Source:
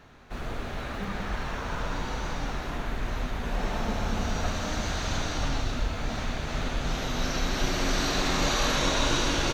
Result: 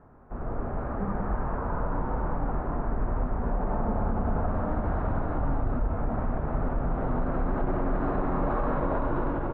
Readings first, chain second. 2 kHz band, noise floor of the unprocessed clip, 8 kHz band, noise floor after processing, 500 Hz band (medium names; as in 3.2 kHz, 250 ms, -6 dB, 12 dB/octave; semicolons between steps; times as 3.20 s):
-10.0 dB, -36 dBFS, under -40 dB, -33 dBFS, +2.0 dB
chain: low-pass 1.2 kHz 24 dB/octave; peak limiter -22.5 dBFS, peak gain reduction 7.5 dB; level rider gain up to 4 dB